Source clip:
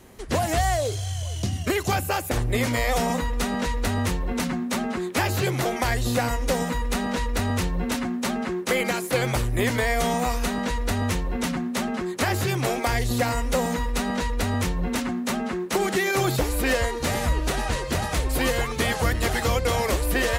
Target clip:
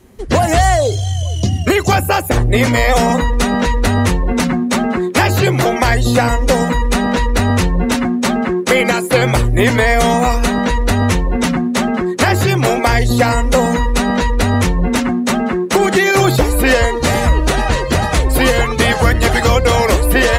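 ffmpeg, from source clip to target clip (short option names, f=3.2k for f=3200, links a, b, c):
-af "afftdn=nr=12:nf=-38,acontrast=66,volume=5dB"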